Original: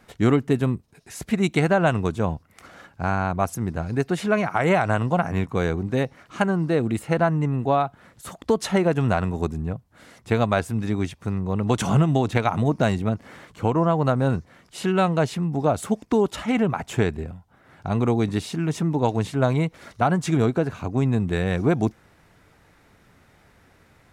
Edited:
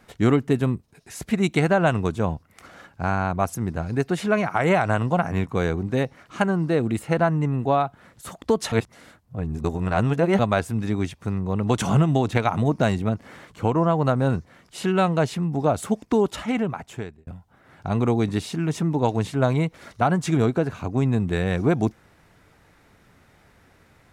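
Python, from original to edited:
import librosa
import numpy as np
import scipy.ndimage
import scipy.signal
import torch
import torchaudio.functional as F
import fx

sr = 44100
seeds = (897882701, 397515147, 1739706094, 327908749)

y = fx.edit(x, sr, fx.reverse_span(start_s=8.72, length_s=1.67),
    fx.fade_out_span(start_s=16.33, length_s=0.94), tone=tone)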